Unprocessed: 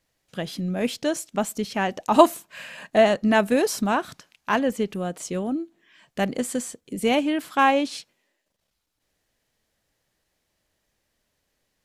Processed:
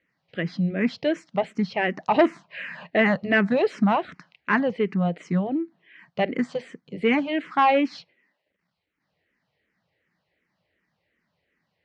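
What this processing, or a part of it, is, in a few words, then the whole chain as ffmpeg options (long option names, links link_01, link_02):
barber-pole phaser into a guitar amplifier: -filter_complex "[0:a]asplit=2[link_01][link_02];[link_02]afreqshift=-2.7[link_03];[link_01][link_03]amix=inputs=2:normalize=1,asoftclip=type=tanh:threshold=-15dB,highpass=98,equalizer=frequency=170:width_type=q:width=4:gain=8,equalizer=frequency=2000:width_type=q:width=4:gain=7,equalizer=frequency=3500:width_type=q:width=4:gain=-6,lowpass=frequency=4000:width=0.5412,lowpass=frequency=4000:width=1.3066,volume=3.5dB"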